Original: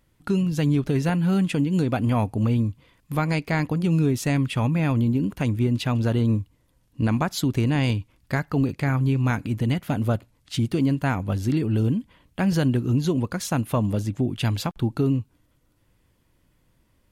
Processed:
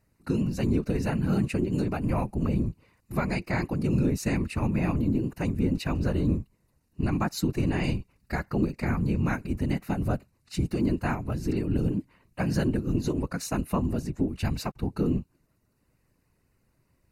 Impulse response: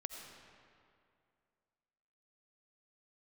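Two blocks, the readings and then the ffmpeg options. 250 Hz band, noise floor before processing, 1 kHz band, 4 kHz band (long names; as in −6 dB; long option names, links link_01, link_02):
−4.0 dB, −65 dBFS, −4.5 dB, −7.0 dB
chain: -af "asuperstop=centerf=3300:order=4:qfactor=4,afftfilt=real='hypot(re,im)*cos(2*PI*random(0))':imag='hypot(re,im)*sin(2*PI*random(1))':win_size=512:overlap=0.75,volume=1.5dB"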